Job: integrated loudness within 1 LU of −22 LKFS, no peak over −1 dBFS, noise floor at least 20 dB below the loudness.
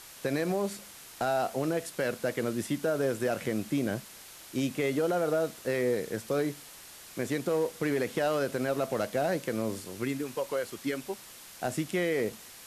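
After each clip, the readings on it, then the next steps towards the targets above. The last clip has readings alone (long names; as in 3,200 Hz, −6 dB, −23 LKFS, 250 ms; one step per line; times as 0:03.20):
share of clipped samples 0.3%; peaks flattened at −20.0 dBFS; background noise floor −49 dBFS; target noise floor −52 dBFS; integrated loudness −31.5 LKFS; sample peak −20.0 dBFS; target loudness −22.0 LKFS
→ clipped peaks rebuilt −20 dBFS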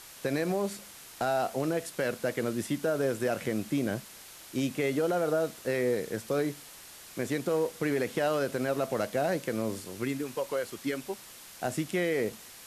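share of clipped samples 0.0%; background noise floor −49 dBFS; target noise floor −51 dBFS
→ broadband denoise 6 dB, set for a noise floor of −49 dBFS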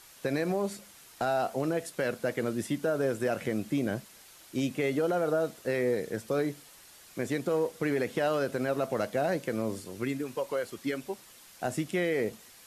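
background noise floor −54 dBFS; integrated loudness −31.5 LKFS; sample peak −17.5 dBFS; target loudness −22.0 LKFS
→ level +9.5 dB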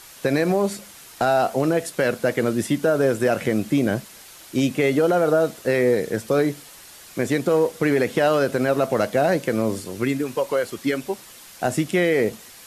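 integrated loudness −22.0 LKFS; sample peak −8.0 dBFS; background noise floor −45 dBFS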